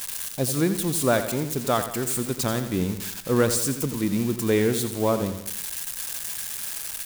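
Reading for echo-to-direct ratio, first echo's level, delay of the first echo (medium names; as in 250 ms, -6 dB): -9.0 dB, -10.5 dB, 86 ms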